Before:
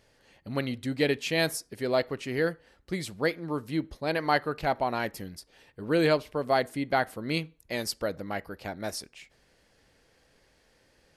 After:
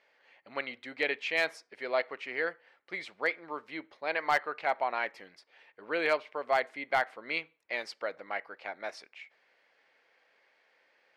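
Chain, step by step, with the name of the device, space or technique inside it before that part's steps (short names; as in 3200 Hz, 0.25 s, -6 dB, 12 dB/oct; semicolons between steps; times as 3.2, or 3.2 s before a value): megaphone (BPF 680–2800 Hz; bell 2200 Hz +6 dB 0.3 oct; hard clip -17.5 dBFS, distortion -22 dB)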